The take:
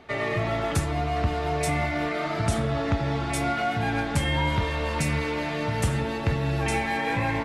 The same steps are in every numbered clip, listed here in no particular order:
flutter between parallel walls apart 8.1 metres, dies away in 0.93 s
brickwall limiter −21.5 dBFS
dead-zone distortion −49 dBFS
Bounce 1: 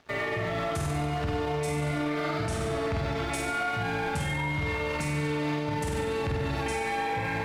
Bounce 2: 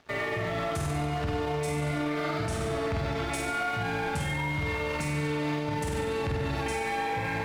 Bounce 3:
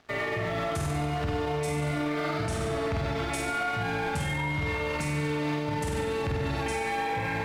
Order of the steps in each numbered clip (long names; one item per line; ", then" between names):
flutter between parallel walls, then dead-zone distortion, then brickwall limiter
flutter between parallel walls, then brickwall limiter, then dead-zone distortion
dead-zone distortion, then flutter between parallel walls, then brickwall limiter